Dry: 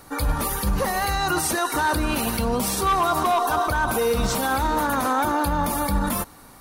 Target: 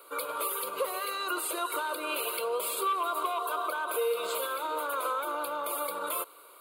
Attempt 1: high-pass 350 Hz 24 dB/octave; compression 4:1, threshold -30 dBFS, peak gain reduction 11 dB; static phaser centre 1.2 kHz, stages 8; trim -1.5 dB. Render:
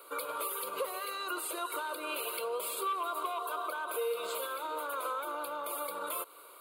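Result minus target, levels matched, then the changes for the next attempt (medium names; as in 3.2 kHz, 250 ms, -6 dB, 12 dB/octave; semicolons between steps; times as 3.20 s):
compression: peak gain reduction +4.5 dB
change: compression 4:1, threshold -24 dBFS, peak gain reduction 6.5 dB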